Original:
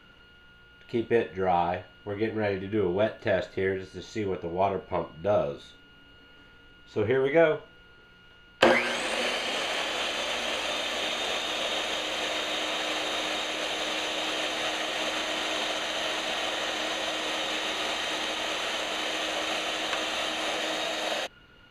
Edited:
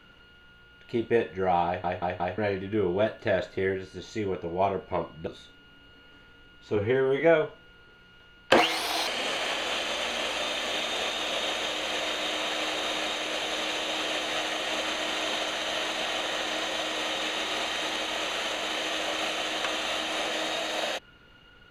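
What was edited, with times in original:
1.66 s: stutter in place 0.18 s, 4 plays
5.27–5.52 s: delete
7.01–7.30 s: stretch 1.5×
8.68–9.36 s: speed 136%

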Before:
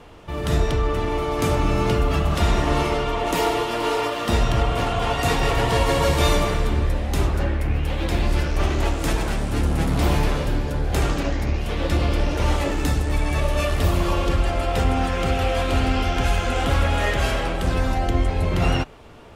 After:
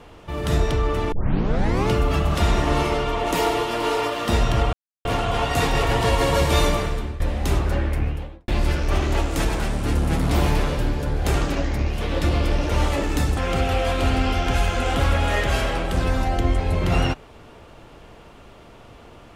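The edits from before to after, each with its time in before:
1.12 s: tape start 0.76 s
4.73 s: insert silence 0.32 s
6.22–6.88 s: fade out equal-power, to -14.5 dB
7.61–8.16 s: studio fade out
13.05–15.07 s: delete

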